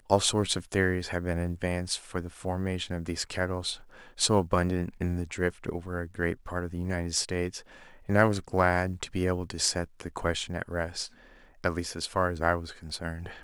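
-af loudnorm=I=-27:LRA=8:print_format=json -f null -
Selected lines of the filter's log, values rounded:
"input_i" : "-30.2",
"input_tp" : "-6.9",
"input_lra" : "3.9",
"input_thresh" : "-40.4",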